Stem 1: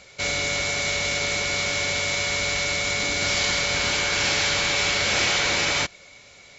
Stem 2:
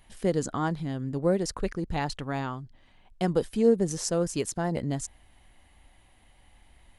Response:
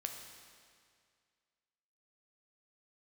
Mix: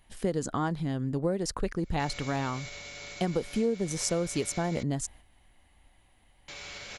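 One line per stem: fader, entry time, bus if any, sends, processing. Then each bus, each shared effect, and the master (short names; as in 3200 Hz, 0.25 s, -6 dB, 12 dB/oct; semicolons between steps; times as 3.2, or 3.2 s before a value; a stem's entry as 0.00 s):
-16.0 dB, 1.80 s, muted 4.83–6.48, no send, limiter -18 dBFS, peak gain reduction 7.5 dB
+2.0 dB, 0.00 s, no send, gate -51 dBFS, range -6 dB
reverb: off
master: compressor 5:1, threshold -25 dBFS, peak gain reduction 10.5 dB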